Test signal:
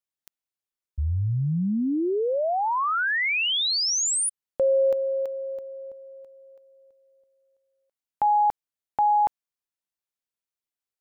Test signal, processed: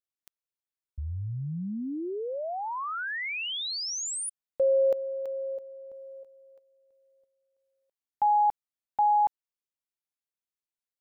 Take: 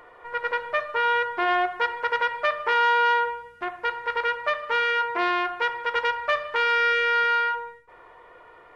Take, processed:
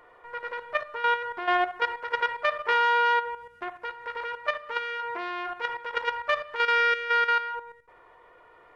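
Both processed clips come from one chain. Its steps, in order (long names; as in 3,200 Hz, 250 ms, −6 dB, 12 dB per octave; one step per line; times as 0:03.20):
output level in coarse steps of 11 dB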